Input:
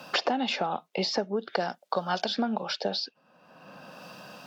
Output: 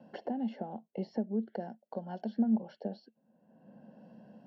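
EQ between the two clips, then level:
moving average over 36 samples
parametric band 220 Hz +13 dB 0.24 octaves
−7.0 dB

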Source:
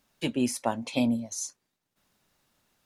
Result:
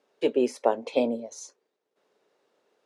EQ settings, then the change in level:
high-pass with resonance 440 Hz, resonance Q 4.9
high-frequency loss of the air 59 metres
spectral tilt −1.5 dB per octave
0.0 dB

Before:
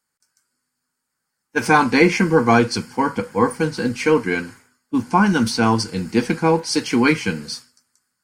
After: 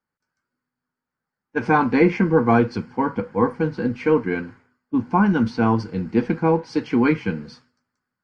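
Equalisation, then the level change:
head-to-tape spacing loss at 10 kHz 36 dB
0.0 dB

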